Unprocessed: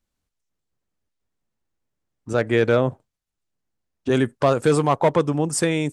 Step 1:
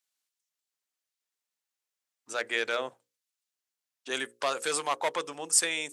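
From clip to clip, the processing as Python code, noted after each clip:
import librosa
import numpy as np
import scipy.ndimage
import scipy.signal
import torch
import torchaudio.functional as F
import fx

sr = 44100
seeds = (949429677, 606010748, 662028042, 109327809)

y = scipy.signal.sosfilt(scipy.signal.butter(2, 410.0, 'highpass', fs=sr, output='sos'), x)
y = fx.tilt_shelf(y, sr, db=-9.0, hz=1300.0)
y = fx.hum_notches(y, sr, base_hz=60, count=9)
y = F.gain(torch.from_numpy(y), -6.0).numpy()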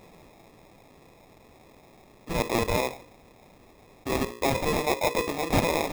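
y = fx.sample_hold(x, sr, seeds[0], rate_hz=1500.0, jitter_pct=0)
y = fx.small_body(y, sr, hz=(1500.0, 2500.0), ring_ms=45, db=8)
y = fx.env_flatten(y, sr, amount_pct=50)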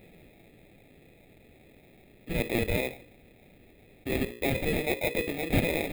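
y = fx.fixed_phaser(x, sr, hz=2500.0, stages=4)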